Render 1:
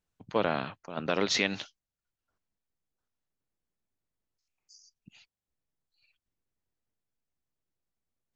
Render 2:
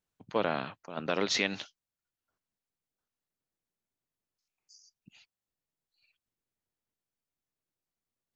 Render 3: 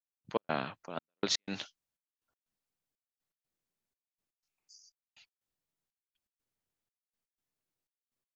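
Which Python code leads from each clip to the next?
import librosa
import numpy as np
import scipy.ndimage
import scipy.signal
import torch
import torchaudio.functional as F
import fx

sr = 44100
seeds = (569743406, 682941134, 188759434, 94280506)

y1 = fx.low_shelf(x, sr, hz=66.0, db=-11.0)
y1 = y1 * librosa.db_to_amplitude(-1.5)
y2 = fx.step_gate(y1, sr, bpm=122, pattern='..x.xxxx', floor_db=-60.0, edge_ms=4.5)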